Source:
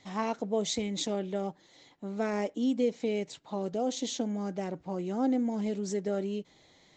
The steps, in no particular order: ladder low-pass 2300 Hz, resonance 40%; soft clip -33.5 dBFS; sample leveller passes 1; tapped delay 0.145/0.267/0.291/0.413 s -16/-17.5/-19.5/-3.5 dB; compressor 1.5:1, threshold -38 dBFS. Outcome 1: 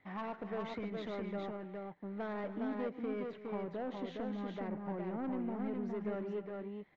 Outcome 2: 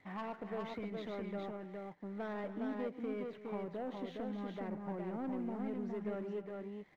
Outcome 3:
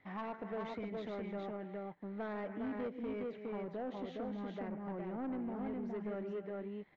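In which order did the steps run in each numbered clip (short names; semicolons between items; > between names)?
sample leveller > ladder low-pass > compressor > soft clip > tapped delay; compressor > ladder low-pass > soft clip > sample leveller > tapped delay; tapped delay > compressor > sample leveller > ladder low-pass > soft clip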